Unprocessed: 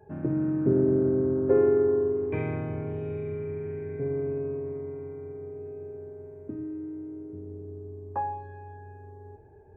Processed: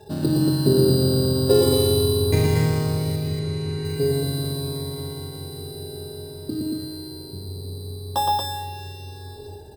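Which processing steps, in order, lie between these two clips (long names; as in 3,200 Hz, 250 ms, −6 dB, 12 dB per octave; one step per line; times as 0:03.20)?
0:01.66–0:02.47: low-shelf EQ 130 Hz +12 dB
in parallel at 0 dB: downward compressor, threshold −31 dBFS, peak gain reduction 13.5 dB
on the sum: decimation without filtering 10×
0:03.16–0:03.85: high-frequency loss of the air 72 metres
on a send: loudspeakers that aren't time-aligned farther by 40 metres −3 dB, 79 metres −3 dB
on the sum: every ending faded ahead of time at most 110 dB per second
level +3 dB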